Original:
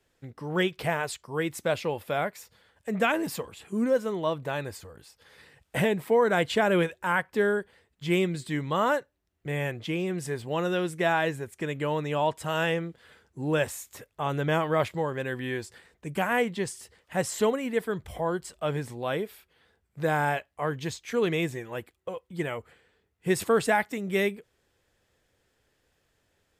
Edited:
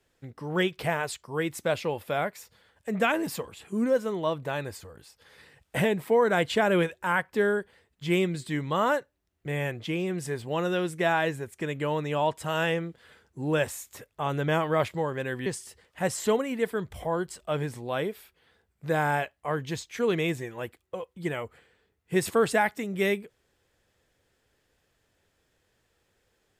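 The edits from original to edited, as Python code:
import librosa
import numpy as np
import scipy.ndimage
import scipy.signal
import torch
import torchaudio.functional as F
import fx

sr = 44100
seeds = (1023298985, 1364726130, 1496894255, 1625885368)

y = fx.edit(x, sr, fx.cut(start_s=15.46, length_s=1.14), tone=tone)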